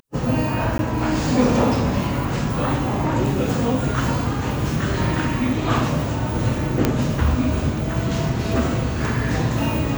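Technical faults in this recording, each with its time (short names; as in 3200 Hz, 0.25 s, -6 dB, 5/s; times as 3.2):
0.78–0.79 gap 12 ms
6.85 pop -3 dBFS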